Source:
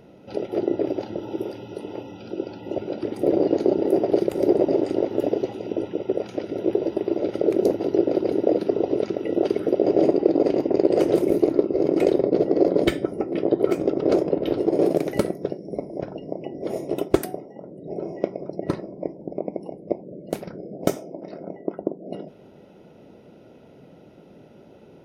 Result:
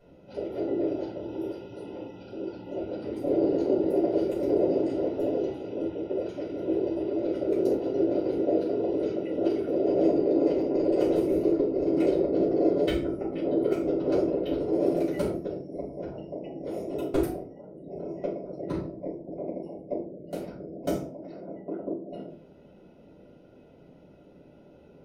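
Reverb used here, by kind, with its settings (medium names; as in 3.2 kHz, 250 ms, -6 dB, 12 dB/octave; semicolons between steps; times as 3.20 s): simulated room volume 270 m³, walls furnished, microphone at 6.6 m; trim -17.5 dB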